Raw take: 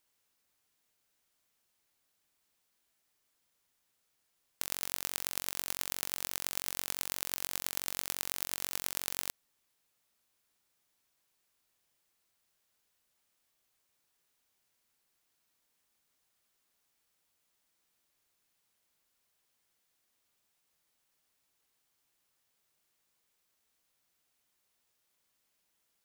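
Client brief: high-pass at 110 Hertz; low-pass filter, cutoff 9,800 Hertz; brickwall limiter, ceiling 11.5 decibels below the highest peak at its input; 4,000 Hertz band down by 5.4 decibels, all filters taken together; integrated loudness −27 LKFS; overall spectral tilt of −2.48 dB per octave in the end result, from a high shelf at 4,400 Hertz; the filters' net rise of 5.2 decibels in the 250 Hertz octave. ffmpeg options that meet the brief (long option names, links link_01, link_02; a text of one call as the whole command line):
ffmpeg -i in.wav -af "highpass=110,lowpass=9800,equalizer=frequency=250:width_type=o:gain=7,equalizer=frequency=4000:width_type=o:gain=-3.5,highshelf=frequency=4400:gain=-6,volume=23.5dB,alimiter=limit=-2dB:level=0:latency=1" out.wav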